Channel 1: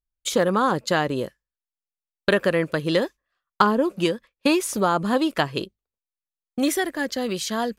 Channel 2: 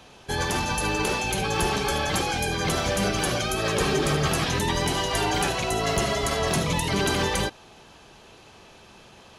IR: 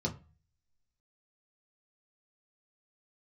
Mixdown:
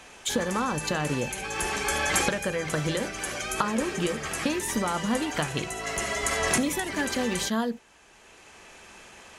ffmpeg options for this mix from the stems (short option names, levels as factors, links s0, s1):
-filter_complex "[0:a]acompressor=threshold=0.0631:ratio=6,volume=1,asplit=3[s0][s1][s2];[s1]volume=0.141[s3];[1:a]equalizer=f=125:t=o:w=1:g=-8,equalizer=f=2000:t=o:w=1:g=9,equalizer=f=4000:t=o:w=1:g=-5,equalizer=f=8000:t=o:w=1:g=11,volume=0.891[s4];[s2]apad=whole_len=414038[s5];[s4][s5]sidechaincompress=threshold=0.0178:ratio=8:attack=45:release=1320[s6];[2:a]atrim=start_sample=2205[s7];[s3][s7]afir=irnorm=-1:irlink=0[s8];[s0][s6][s8]amix=inputs=3:normalize=0"